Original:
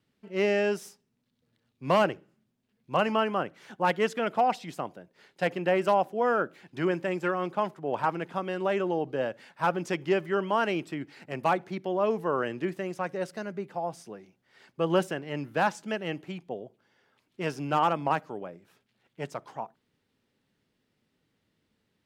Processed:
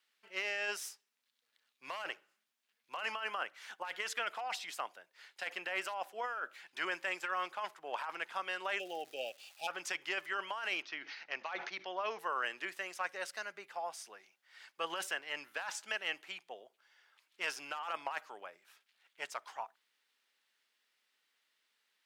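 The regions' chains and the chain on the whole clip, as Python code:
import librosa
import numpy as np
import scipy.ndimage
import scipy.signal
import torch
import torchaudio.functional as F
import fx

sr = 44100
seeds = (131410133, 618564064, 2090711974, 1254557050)

y = fx.brickwall_bandstop(x, sr, low_hz=840.0, high_hz=2300.0, at=(8.78, 9.67), fade=0.02)
y = fx.dmg_crackle(y, sr, seeds[0], per_s=570.0, level_db=-50.0, at=(8.78, 9.67), fade=0.02)
y = fx.chain(y, sr, fx.steep_lowpass(hz=6400.0, slope=96),
    fx.sustainer(db_per_s=120.0), at=(10.82, 12.19))
y = scipy.signal.sosfilt(scipy.signal.butter(2, 1300.0, 'highpass', fs=sr, output='sos'), y)
y = fx.over_compress(y, sr, threshold_db=-37.0, ratio=-1.0)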